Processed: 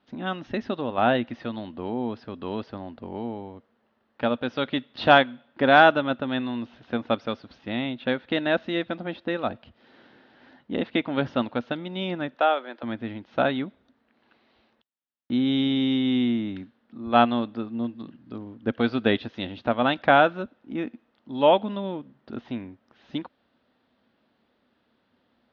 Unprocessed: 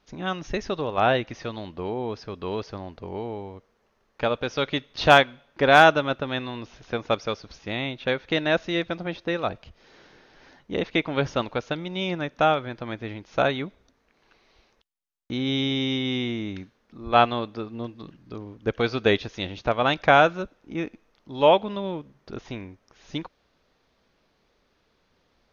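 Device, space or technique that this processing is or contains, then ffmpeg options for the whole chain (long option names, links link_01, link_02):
guitar cabinet: -filter_complex "[0:a]asettb=1/sr,asplit=3[link_01][link_02][link_03];[link_01]atrim=end=12.364[link_04];[link_02]atrim=start=12.36:end=12.83,asetpts=PTS-STARTPTS,afade=type=in:duration=0.004:curve=qsin,afade=type=out:start_time=0.466:duration=0.004:curve=qsin,highpass=frequency=370:width=0.5412,highpass=frequency=370:width=1.3066[link_05];[link_03]atrim=start=12.826[link_06];[link_04][link_05]acrossfade=duration=0.004:curve1=hsin:curve2=qsin[link_07];[link_07][link_06]acrossfade=duration=0.004:curve1=qsin:curve2=hsin,highpass=110,equalizer=frequency=160:width_type=q:width=4:gain=-5,equalizer=frequency=240:width_type=q:width=4:gain=9,equalizer=frequency=430:width_type=q:width=4:gain=-5,equalizer=frequency=1100:width_type=q:width=4:gain=-3,equalizer=frequency=2300:width_type=q:width=4:gain=-6,lowpass=frequency=3700:width=0.5412,lowpass=frequency=3700:width=1.3066"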